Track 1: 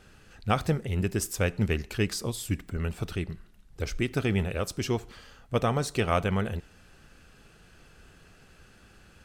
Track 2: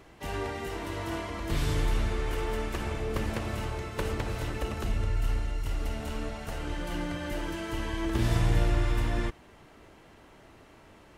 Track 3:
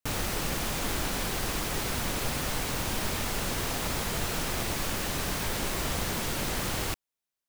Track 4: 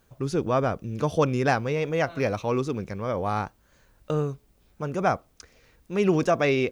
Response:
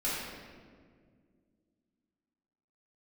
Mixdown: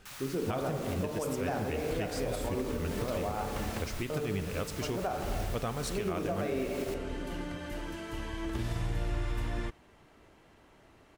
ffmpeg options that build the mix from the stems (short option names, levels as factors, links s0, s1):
-filter_complex "[0:a]tremolo=f=3.9:d=0.44,volume=0.75,asplit=3[s0][s1][s2];[s1]volume=0.1[s3];[1:a]adelay=400,volume=0.531[s4];[2:a]highpass=f=960:w=0.5412,highpass=f=960:w=1.3066,volume=0.251[s5];[3:a]equalizer=f=440:t=o:w=2.6:g=8,volume=0.188,asplit=2[s6][s7];[s7]volume=0.447[s8];[s2]apad=whole_len=510510[s9];[s4][s9]sidechaincompress=threshold=0.0141:ratio=8:attack=16:release=249[s10];[4:a]atrim=start_sample=2205[s11];[s3][s8]amix=inputs=2:normalize=0[s12];[s12][s11]afir=irnorm=-1:irlink=0[s13];[s0][s10][s5][s6][s13]amix=inputs=5:normalize=0,alimiter=limit=0.0668:level=0:latency=1:release=220"